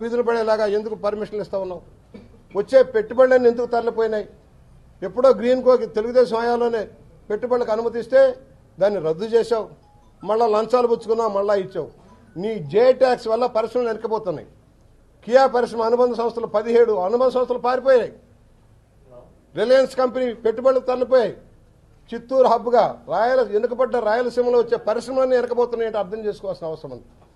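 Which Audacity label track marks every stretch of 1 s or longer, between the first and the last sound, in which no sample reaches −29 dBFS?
18.090000	19.560000	silence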